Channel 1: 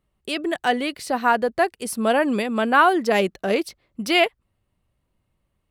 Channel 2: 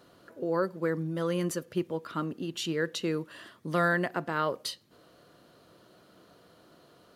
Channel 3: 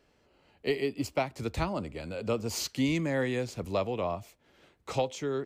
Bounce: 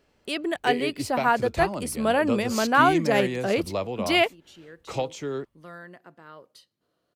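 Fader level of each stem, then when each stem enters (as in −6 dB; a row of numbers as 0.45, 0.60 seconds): −3.0, −17.0, +1.0 decibels; 0.00, 1.90, 0.00 seconds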